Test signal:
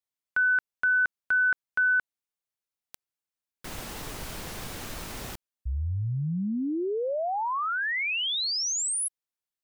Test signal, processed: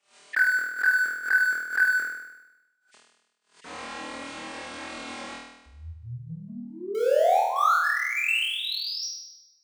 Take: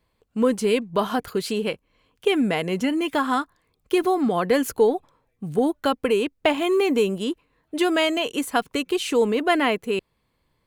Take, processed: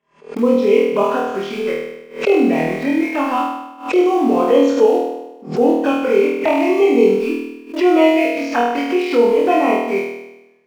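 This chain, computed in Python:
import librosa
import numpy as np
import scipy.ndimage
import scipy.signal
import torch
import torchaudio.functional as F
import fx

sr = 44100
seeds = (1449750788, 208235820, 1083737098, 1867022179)

p1 = fx.freq_compress(x, sr, knee_hz=1700.0, ratio=1.5)
p2 = scipy.signal.sosfilt(scipy.signal.butter(2, 120.0, 'highpass', fs=sr, output='sos'), p1)
p3 = fx.bass_treble(p2, sr, bass_db=-2, treble_db=-11)
p4 = fx.hum_notches(p3, sr, base_hz=50, count=4)
p5 = fx.env_flanger(p4, sr, rest_ms=5.0, full_db=-19.0)
p6 = np.where(np.abs(p5) >= 10.0 ** (-31.0 / 20.0), p5, 0.0)
p7 = p5 + (p6 * 10.0 ** (-9.5 / 20.0))
p8 = fx.low_shelf(p7, sr, hz=180.0, db=-7.5)
p9 = fx.doubler(p8, sr, ms=46.0, db=-14.0)
p10 = p9 + fx.room_flutter(p9, sr, wall_m=4.3, rt60_s=0.96, dry=0)
p11 = fx.pre_swell(p10, sr, db_per_s=150.0)
y = p11 * 10.0 ** (2.5 / 20.0)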